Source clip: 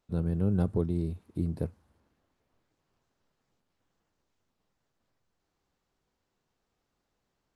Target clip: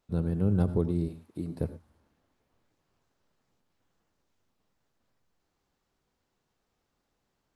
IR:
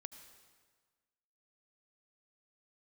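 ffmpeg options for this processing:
-filter_complex "[0:a]asettb=1/sr,asplit=3[s0][s1][s2];[s0]atrim=end=1.084[s3];[s1]atrim=start=1.08:end=1.61,asetpts=PTS-STARTPTS,afade=t=in:d=0.004:c=qsin,afade=t=out:st=0.526:d=0.004:c=qsin,highpass=f=320:p=1[s4];[s2]atrim=start=1.606[s5];[s3][s4]acrossfade=d=0.004:c1=hsin:c2=qsin[s6];[s6][s5]acrossfade=d=0.004:c1=qsin:c2=hsin[s7];[1:a]atrim=start_sample=2205,afade=t=out:st=0.17:d=0.01,atrim=end_sample=7938[s8];[s7][s8]afir=irnorm=-1:irlink=0,volume=2.24"

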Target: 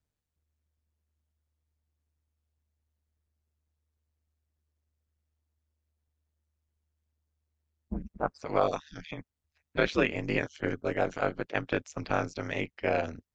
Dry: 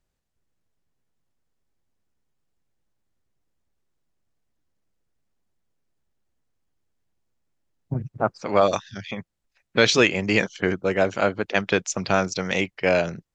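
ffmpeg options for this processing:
-filter_complex "[0:a]acrossover=split=2800[s0][s1];[s1]acompressor=threshold=0.0112:ratio=4:attack=1:release=60[s2];[s0][s2]amix=inputs=2:normalize=0,aeval=exprs='val(0)*sin(2*PI*76*n/s)':c=same,volume=0.562"

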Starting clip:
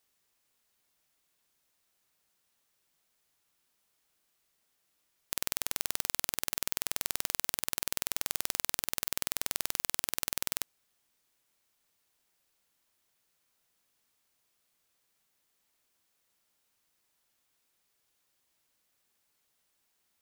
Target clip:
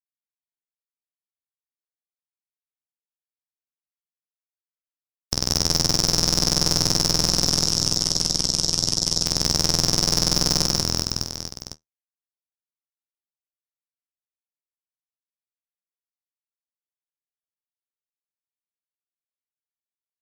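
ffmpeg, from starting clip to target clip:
-filter_complex "[0:a]highpass=100,volume=5.01,asoftclip=hard,volume=0.2,asplit=3[s0][s1][s2];[s0]afade=t=out:st=7.26:d=0.02[s3];[s1]acompressor=threshold=0.00316:ratio=2,afade=t=in:st=7.26:d=0.02,afade=t=out:st=9.26:d=0.02[s4];[s2]afade=t=in:st=9.26:d=0.02[s5];[s3][s4][s5]amix=inputs=3:normalize=0,equalizer=f=5400:t=o:w=0.28:g=13.5,afftfilt=real='re*gte(hypot(re,im),0.00282)':imag='im*gte(hypot(re,im),0.00282)':win_size=1024:overlap=0.75,highshelf=f=11000:g=7.5,aeval=exprs='0.0562*(abs(mod(val(0)/0.0562+3,4)-2)-1)':c=same,aeval=exprs='0.501*(cos(1*acos(clip(val(0)/0.501,-1,1)))-cos(1*PI/2))+0.158*(cos(4*acos(clip(val(0)/0.501,-1,1)))-cos(4*PI/2))':c=same,flanger=delay=9.8:depth=5:regen=-50:speed=1:shape=triangular,aecho=1:1:180|378|595.8|835.4|1099:0.631|0.398|0.251|0.158|0.1,alimiter=level_in=53.1:limit=0.891:release=50:level=0:latency=1,volume=0.891"

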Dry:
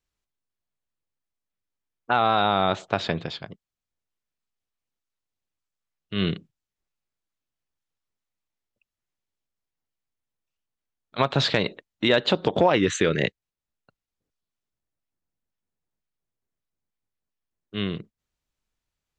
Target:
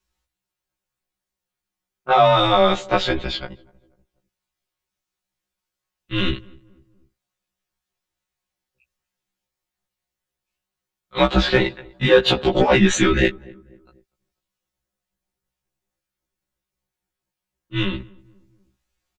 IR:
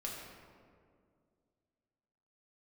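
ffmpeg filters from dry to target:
-filter_complex "[0:a]asplit=2[s0][s1];[s1]adelay=245,lowpass=f=1000:p=1,volume=0.0668,asplit=2[s2][s3];[s3]adelay=245,lowpass=f=1000:p=1,volume=0.48,asplit=2[s4][s5];[s5]adelay=245,lowpass=f=1000:p=1,volume=0.48[s6];[s0][s2][s4][s6]amix=inputs=4:normalize=0,asettb=1/sr,asplit=3[s7][s8][s9];[s7]atrim=end=11.374[s10];[s8]atrim=start=11.37:end=12.25,asetpts=PTS-STARTPTS,afade=t=in:d=0.004:c=qsin,afade=t=out:st=0.876:d=0.004:c=qsin,acrossover=split=2800[s11][s12];[s12]acompressor=threshold=0.0224:ratio=4:attack=1:release=60[s13];[s11][s13]amix=inputs=2:normalize=0[s14];[s9]atrim=start=12.246[s15];[s10][s14]acrossfade=d=0.004:c1=hsin:c2=qsin[s16];[s16][s15]acrossfade=d=0.004:c1=qsin:c2=hsin,afreqshift=-87,aecho=1:1:5.5:0.88,asplit=2[s17][s18];[s18]asoftclip=type=tanh:threshold=0.178,volume=0.501[s19];[s17][s19]amix=inputs=2:normalize=0,afftfilt=real='re*1.73*eq(mod(b,3),0)':imag='im*1.73*eq(mod(b,3),0)':win_size=2048:overlap=0.75,volume=1.5"

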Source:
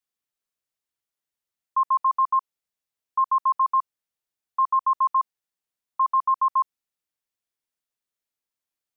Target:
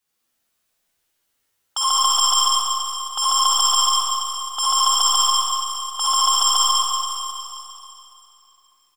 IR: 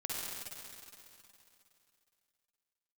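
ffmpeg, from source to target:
-filter_complex "[0:a]aecho=1:1:12|60:0.596|0.266,aeval=exprs='0.178*sin(PI/2*5.01*val(0)/0.178)':c=same,aeval=exprs='0.188*(cos(1*acos(clip(val(0)/0.188,-1,1)))-cos(1*PI/2))+0.0119*(cos(3*acos(clip(val(0)/0.188,-1,1)))-cos(3*PI/2))+0.00596*(cos(6*acos(clip(val(0)/0.188,-1,1)))-cos(6*PI/2))+0.0075*(cos(7*acos(clip(val(0)/0.188,-1,1)))-cos(7*PI/2))':c=same[s0];[1:a]atrim=start_sample=2205[s1];[s0][s1]afir=irnorm=-1:irlink=0"

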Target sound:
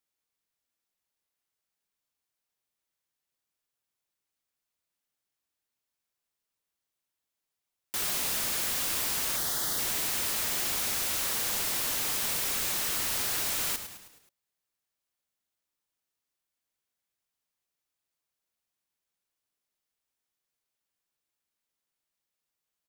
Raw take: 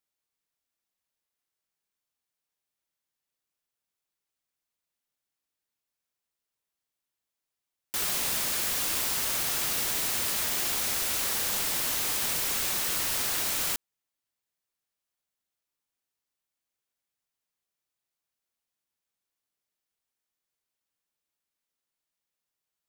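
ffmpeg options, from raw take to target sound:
-filter_complex "[0:a]asettb=1/sr,asplit=3[s0][s1][s2];[s0]atrim=end=9.364[s3];[s1]atrim=start=9.36:end=9.79,asetpts=PTS-STARTPTS,afade=t=in:d=0.004:c=qsin,afade=t=out:st=0.426:d=0.004:c=qsin,asuperstop=centerf=2500:order=4:qfactor=2.1[s4];[s2]atrim=start=9.786[s5];[s3][s4]acrossfade=d=0.004:c1=hsin:c2=qsin[s6];[s6][s5]acrossfade=d=0.004:c1=qsin:c2=hsin,asplit=6[s7][s8][s9][s10][s11][s12];[s8]adelay=106,afreqshift=-120,volume=0.251[s13];[s9]adelay=212,afreqshift=-240,volume=0.126[s14];[s10]adelay=318,afreqshift=-360,volume=0.0631[s15];[s11]adelay=424,afreqshift=-480,volume=0.0313[s16];[s12]adelay=530,afreqshift=-600,volume=0.0157[s17];[s7][s13][s14][s15][s16][s17]amix=inputs=6:normalize=0,asoftclip=type=tanh:threshold=0.0708"

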